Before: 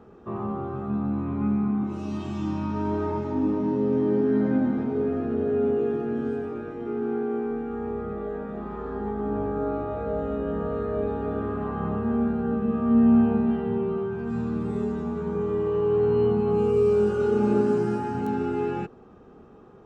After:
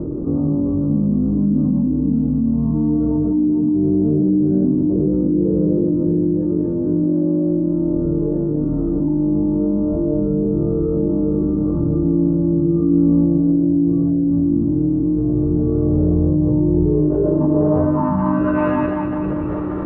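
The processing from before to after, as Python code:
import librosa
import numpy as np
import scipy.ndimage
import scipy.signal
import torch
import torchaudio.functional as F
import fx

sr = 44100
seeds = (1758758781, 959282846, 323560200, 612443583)

p1 = x + fx.echo_split(x, sr, split_hz=390.0, low_ms=645, high_ms=198, feedback_pct=52, wet_db=-13, dry=0)
p2 = fx.pitch_keep_formants(p1, sr, semitones=-5.5)
p3 = fx.filter_sweep_lowpass(p2, sr, from_hz=300.0, to_hz=1800.0, start_s=16.7, end_s=18.68, q=1.5)
y = fx.env_flatten(p3, sr, amount_pct=70)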